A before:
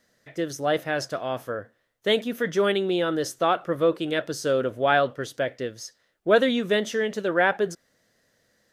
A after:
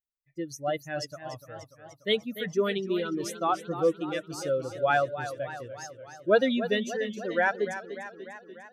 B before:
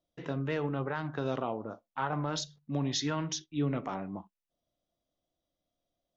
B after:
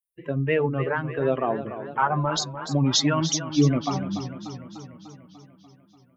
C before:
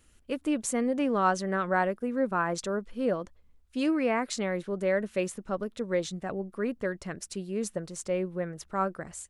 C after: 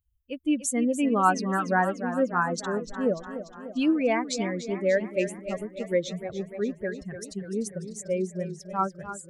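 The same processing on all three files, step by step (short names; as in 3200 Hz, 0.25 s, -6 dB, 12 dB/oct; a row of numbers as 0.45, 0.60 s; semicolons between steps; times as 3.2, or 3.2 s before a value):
per-bin expansion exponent 2; warbling echo 0.295 s, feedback 63%, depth 90 cents, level -11.5 dB; normalise peaks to -9 dBFS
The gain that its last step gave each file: -0.5, +13.5, +6.0 dB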